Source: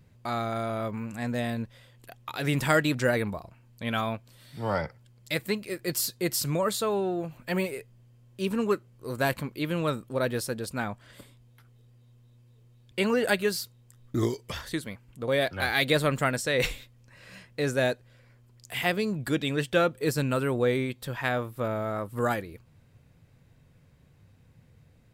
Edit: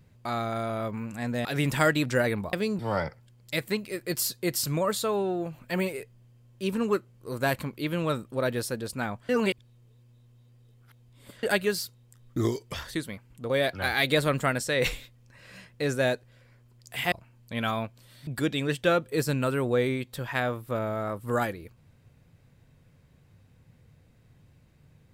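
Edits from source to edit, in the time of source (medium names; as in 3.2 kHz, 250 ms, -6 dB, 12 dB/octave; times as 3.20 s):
1.45–2.34 s: delete
3.42–4.57 s: swap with 18.90–19.16 s
11.07–13.21 s: reverse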